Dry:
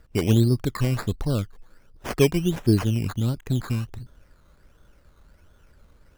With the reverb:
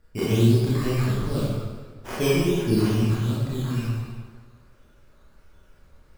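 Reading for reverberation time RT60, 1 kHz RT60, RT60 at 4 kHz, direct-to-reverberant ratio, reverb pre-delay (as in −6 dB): 1.6 s, 1.6 s, 1.2 s, −9.5 dB, 21 ms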